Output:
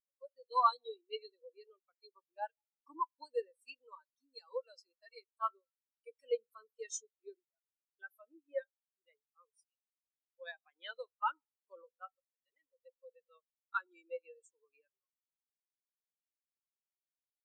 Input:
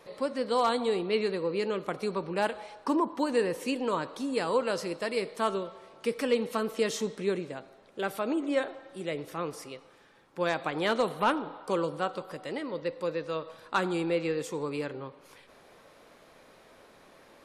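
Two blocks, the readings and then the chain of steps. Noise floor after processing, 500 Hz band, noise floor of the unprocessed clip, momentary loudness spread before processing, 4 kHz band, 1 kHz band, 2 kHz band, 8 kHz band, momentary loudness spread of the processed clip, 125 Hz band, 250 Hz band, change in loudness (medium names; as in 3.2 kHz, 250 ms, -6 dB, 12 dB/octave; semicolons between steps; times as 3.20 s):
under -85 dBFS, -16.0 dB, -57 dBFS, 10 LU, -15.0 dB, -6.5 dB, -14.5 dB, -7.0 dB, 20 LU, under -40 dB, -36.5 dB, -9.0 dB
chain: differentiator; spectral contrast expander 4:1; trim +8 dB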